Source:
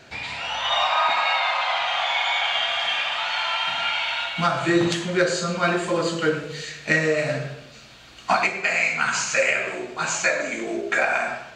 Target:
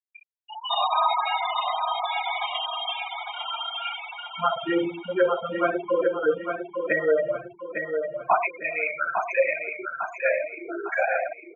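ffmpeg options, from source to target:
ffmpeg -i in.wav -filter_complex "[0:a]afftfilt=real='re*gte(hypot(re,im),0.251)':imag='im*gte(hypot(re,im),0.251)':win_size=1024:overlap=0.75,equalizer=frequency=125:width_type=o:width=1:gain=-12,equalizer=frequency=500:width_type=o:width=1:gain=9,equalizer=frequency=1000:width_type=o:width=1:gain=8,equalizer=frequency=4000:width_type=o:width=1:gain=9,equalizer=frequency=8000:width_type=o:width=1:gain=-11,acrossover=split=100|900[link_01][link_02][link_03];[link_01]acrusher=bits=5:mode=log:mix=0:aa=0.000001[link_04];[link_04][link_02][link_03]amix=inputs=3:normalize=0,aecho=1:1:854|1708|2562|3416|4270:0.501|0.21|0.0884|0.0371|0.0156,volume=-8dB" out.wav

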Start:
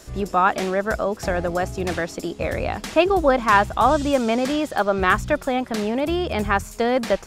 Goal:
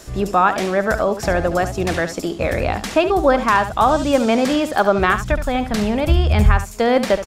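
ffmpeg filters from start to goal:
ffmpeg -i in.wav -filter_complex "[0:a]asplit=3[link_01][link_02][link_03];[link_01]afade=type=out:start_time=5.3:duration=0.02[link_04];[link_02]asubboost=boost=8:cutoff=110,afade=type=in:start_time=5.3:duration=0.02,afade=type=out:start_time=6.56:duration=0.02[link_05];[link_03]afade=type=in:start_time=6.56:duration=0.02[link_06];[link_04][link_05][link_06]amix=inputs=3:normalize=0,alimiter=limit=-8.5dB:level=0:latency=1:release=367,aecho=1:1:71:0.266,volume=4.5dB" out.wav

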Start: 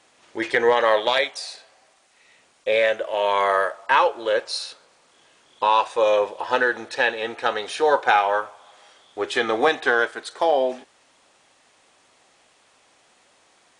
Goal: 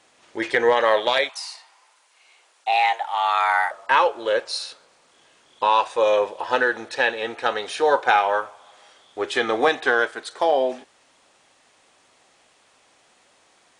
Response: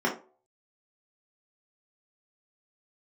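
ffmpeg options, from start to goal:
-filter_complex "[0:a]asettb=1/sr,asplit=3[link_01][link_02][link_03];[link_01]atrim=end=1.294[link_04];[link_02]atrim=start=1.29:end=3.71,asetpts=PTS-STARTPTS,afade=type=in:duration=0.004:curve=qsin,afade=type=out:start_time=2.416:duration=0.004:curve=qsin,afreqshift=250[link_05];[link_03]atrim=start=3.706[link_06];[link_04][link_05]acrossfade=duration=0.004:curve1=hsin:curve2=qsin[link_07];[link_07][link_06]acrossfade=duration=0.004:curve1=qsin:curve2=hsin"

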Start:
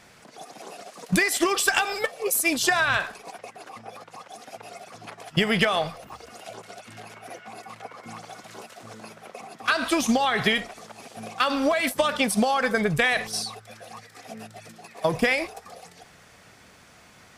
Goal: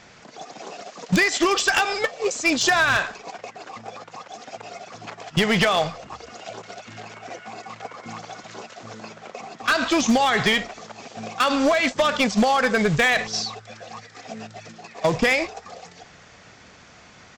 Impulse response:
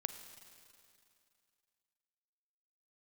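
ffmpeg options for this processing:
-af "aresample=16000,acrusher=bits=4:mode=log:mix=0:aa=0.000001,aresample=44100,volume=17dB,asoftclip=hard,volume=-17dB,volume=4dB"

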